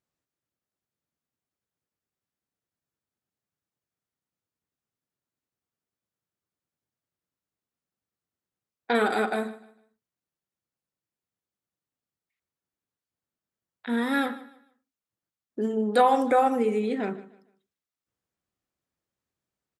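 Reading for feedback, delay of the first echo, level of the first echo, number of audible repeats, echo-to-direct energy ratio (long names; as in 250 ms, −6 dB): 29%, 151 ms, −18.0 dB, 2, −17.5 dB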